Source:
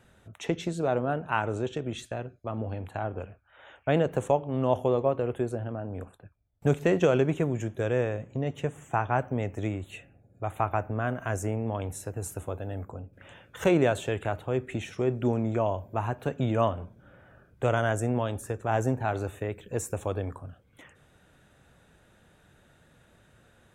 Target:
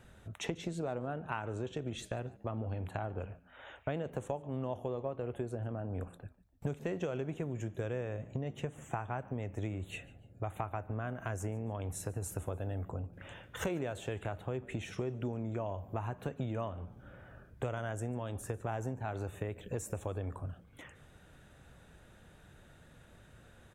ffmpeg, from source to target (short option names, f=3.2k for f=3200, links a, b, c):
-filter_complex "[0:a]lowshelf=f=76:g=8,acompressor=threshold=-34dB:ratio=6,asplit=3[a][b][c];[b]adelay=145,afreqshift=80,volume=-22dB[d];[c]adelay=290,afreqshift=160,volume=-31.9dB[e];[a][d][e]amix=inputs=3:normalize=0"